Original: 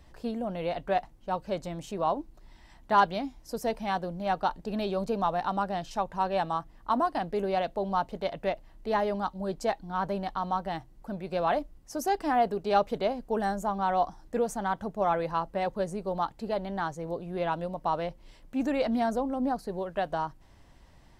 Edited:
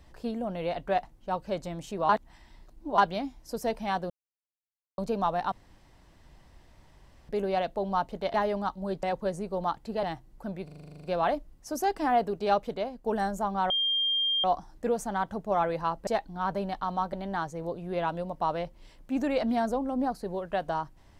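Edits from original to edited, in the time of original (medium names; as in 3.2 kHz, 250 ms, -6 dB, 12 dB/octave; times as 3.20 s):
2.09–2.98 s: reverse
4.10–4.98 s: mute
5.52–7.29 s: room tone
8.34–8.92 s: delete
9.61–10.67 s: swap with 15.57–16.57 s
11.28 s: stutter 0.04 s, 11 plays
12.62–13.28 s: fade out, to -7 dB
13.94 s: add tone 3.2 kHz -24 dBFS 0.74 s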